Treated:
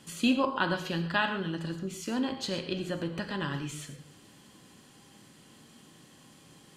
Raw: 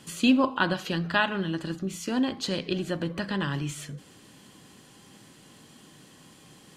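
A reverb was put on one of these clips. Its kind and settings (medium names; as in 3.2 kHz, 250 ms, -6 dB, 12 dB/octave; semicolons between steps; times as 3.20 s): gated-style reverb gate 160 ms flat, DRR 7 dB; trim -4 dB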